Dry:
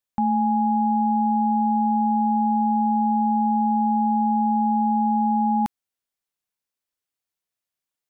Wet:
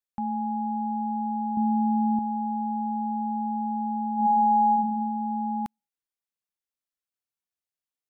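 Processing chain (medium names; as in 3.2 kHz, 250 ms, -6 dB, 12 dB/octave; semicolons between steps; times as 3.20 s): 1.57–2.19 s: bass shelf 480 Hz +8.5 dB; 4.15–4.72 s: reverb throw, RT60 1 s, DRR -5 dB; trim -8 dB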